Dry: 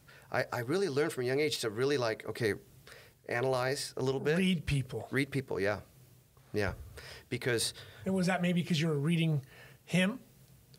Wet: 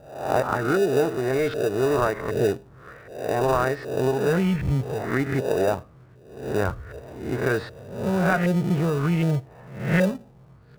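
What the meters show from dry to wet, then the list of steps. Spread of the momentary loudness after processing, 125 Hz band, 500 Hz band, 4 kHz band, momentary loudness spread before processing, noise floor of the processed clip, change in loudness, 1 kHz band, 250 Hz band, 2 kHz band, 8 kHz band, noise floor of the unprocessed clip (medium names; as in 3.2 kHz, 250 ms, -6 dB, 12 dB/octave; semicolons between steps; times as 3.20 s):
11 LU, +8.5 dB, +10.0 dB, -1.5 dB, 9 LU, -51 dBFS, +8.5 dB, +12.5 dB, +8.5 dB, +6.5 dB, +1.0 dB, -62 dBFS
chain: reverse spectral sustain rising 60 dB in 0.65 s; LFO low-pass saw up 1.3 Hz 570–1600 Hz; in parallel at -9 dB: sample-and-hold 41×; on the sum: trim +5 dB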